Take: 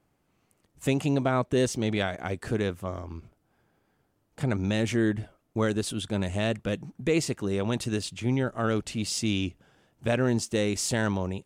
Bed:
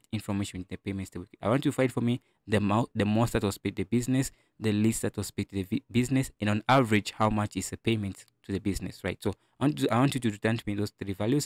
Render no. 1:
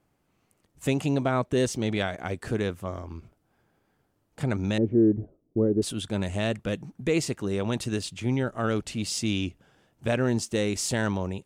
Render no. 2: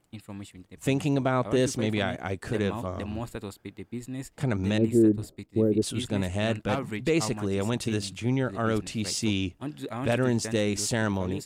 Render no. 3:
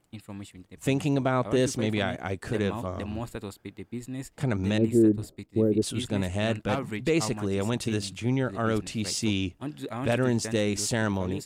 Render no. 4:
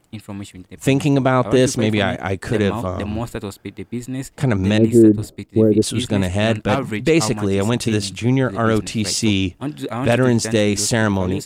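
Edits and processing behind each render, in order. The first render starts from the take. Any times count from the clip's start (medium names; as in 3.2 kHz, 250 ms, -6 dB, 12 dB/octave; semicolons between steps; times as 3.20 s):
4.78–5.82 s: resonant low-pass 390 Hz, resonance Q 2.1
add bed -9.5 dB
no audible change
trim +9.5 dB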